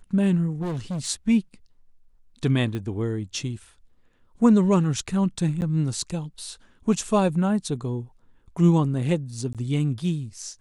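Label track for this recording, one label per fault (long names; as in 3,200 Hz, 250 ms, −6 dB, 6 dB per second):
0.610000	1.080000	clipping −25.5 dBFS
2.750000	2.750000	click −19 dBFS
5.610000	5.620000	drop-out 9.7 ms
9.530000	9.550000	drop-out 17 ms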